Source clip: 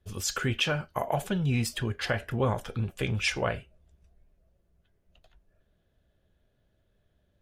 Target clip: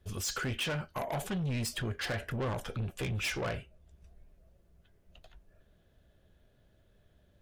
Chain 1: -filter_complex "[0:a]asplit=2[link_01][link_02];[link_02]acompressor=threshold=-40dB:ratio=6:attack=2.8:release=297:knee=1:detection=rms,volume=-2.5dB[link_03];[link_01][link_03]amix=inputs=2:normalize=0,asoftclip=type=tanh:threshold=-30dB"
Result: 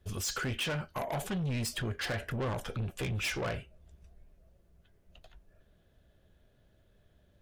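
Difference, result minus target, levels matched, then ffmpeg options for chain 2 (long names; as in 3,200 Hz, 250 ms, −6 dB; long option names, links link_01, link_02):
downward compressor: peak gain reduction −9.5 dB
-filter_complex "[0:a]asplit=2[link_01][link_02];[link_02]acompressor=threshold=-51.5dB:ratio=6:attack=2.8:release=297:knee=1:detection=rms,volume=-2.5dB[link_03];[link_01][link_03]amix=inputs=2:normalize=0,asoftclip=type=tanh:threshold=-30dB"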